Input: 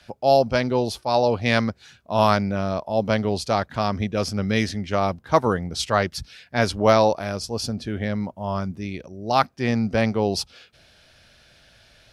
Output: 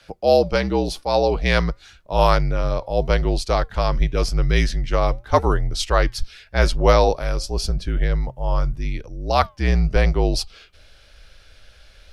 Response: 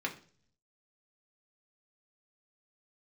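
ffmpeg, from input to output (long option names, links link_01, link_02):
-af "afreqshift=-54,asubboost=boost=5:cutoff=73,flanger=delay=1.9:depth=2.9:regen=-90:speed=0.88:shape=triangular,volume=6dB"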